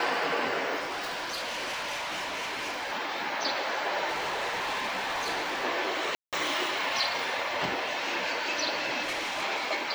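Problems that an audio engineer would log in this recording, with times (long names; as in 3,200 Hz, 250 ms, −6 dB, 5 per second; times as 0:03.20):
0:00.79–0:02.93: clipping −30.5 dBFS
0:04.08–0:05.65: clipping −27.5 dBFS
0:06.15–0:06.33: drop-out 177 ms
0:09.02–0:09.44: clipping −28.5 dBFS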